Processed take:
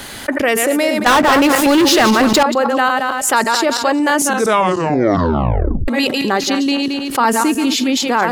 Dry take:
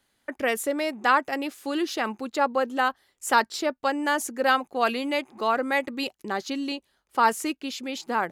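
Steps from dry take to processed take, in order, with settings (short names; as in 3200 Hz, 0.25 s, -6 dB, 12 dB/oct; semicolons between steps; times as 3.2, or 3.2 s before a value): regenerating reverse delay 0.111 s, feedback 42%, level -8 dB; 1.06–2.43 sample leveller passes 5; 4.18 tape stop 1.70 s; 7.2–7.97 bell 260 Hz +8.5 dB 0.64 oct; fast leveller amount 70%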